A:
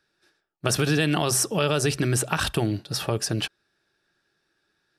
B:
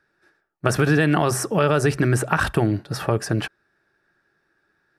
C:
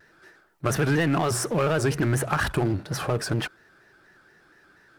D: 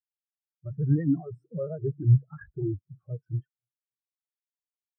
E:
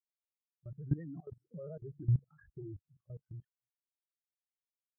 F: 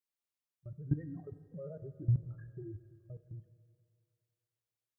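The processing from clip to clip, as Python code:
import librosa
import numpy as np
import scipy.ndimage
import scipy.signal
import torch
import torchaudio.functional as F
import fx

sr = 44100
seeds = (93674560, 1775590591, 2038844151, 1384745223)

y1 = fx.high_shelf_res(x, sr, hz=2400.0, db=-8.5, q=1.5)
y1 = y1 * librosa.db_to_amplitude(4.5)
y2 = fx.power_curve(y1, sr, exponent=0.7)
y2 = fx.vibrato_shape(y2, sr, shape='square', rate_hz=4.2, depth_cents=100.0)
y2 = y2 * librosa.db_to_amplitude(-8.0)
y3 = fx.echo_feedback(y2, sr, ms=283, feedback_pct=58, wet_db=-18.0)
y3 = fx.spectral_expand(y3, sr, expansion=4.0)
y4 = fx.level_steps(y3, sr, step_db=19)
y4 = y4 * librosa.db_to_amplitude(-6.0)
y5 = fx.rev_fdn(y4, sr, rt60_s=2.4, lf_ratio=0.75, hf_ratio=0.6, size_ms=58.0, drr_db=11.0)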